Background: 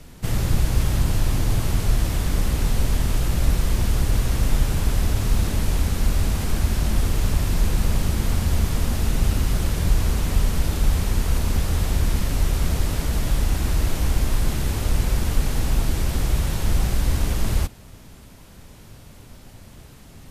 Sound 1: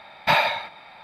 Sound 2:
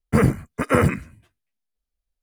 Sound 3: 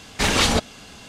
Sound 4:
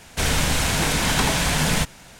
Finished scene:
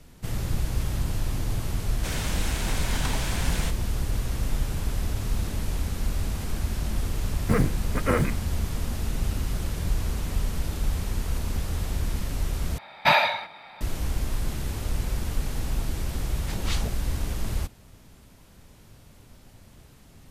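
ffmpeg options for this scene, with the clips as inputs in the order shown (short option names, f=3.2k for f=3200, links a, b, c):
-filter_complex "[0:a]volume=-7dB[a];[3:a]acrossover=split=720[b][c];[b]aeval=exprs='val(0)*(1-1/2+1/2*cos(2*PI*3.3*n/s))':c=same[d];[c]aeval=exprs='val(0)*(1-1/2-1/2*cos(2*PI*3.3*n/s))':c=same[e];[d][e]amix=inputs=2:normalize=0[f];[a]asplit=2[g][h];[g]atrim=end=12.784[i];[1:a]atrim=end=1.03[j];[h]atrim=start=13.806[k];[4:a]atrim=end=2.19,asetpts=PTS-STARTPTS,volume=-11dB,afade=t=in:d=0.004:c=hsin,afade=t=out:st=2.186:d=0.004:c=hsin,adelay=1860[l];[2:a]atrim=end=2.22,asetpts=PTS-STARTPTS,volume=-6dB,afade=t=in:d=0.004:c=hsin,afade=t=out:st=2.216:d=0.004:c=hsin,adelay=7360[m];[f]atrim=end=1.08,asetpts=PTS-STARTPTS,volume=-13dB,afade=t=in:d=0.004:c=hsin,afade=t=out:st=1.076:d=0.004:c=hsin,adelay=16290[n];[i][j]acrossfade=d=0.004:c1=hsin:c2=hsin[o];[o][k]acrossfade=d=0.004:c1=hsin:c2=hsin[p];[p][l][m][n]amix=inputs=4:normalize=0"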